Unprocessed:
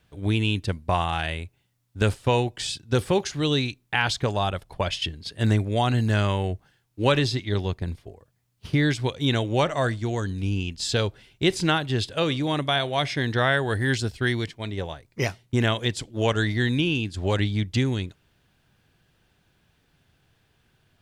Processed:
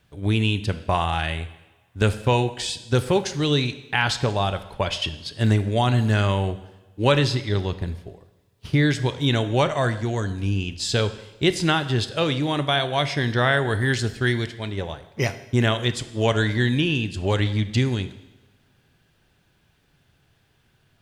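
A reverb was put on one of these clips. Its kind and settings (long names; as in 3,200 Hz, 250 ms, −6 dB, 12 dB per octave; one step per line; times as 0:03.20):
coupled-rooms reverb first 0.99 s, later 3.1 s, from −26 dB, DRR 10.5 dB
level +1.5 dB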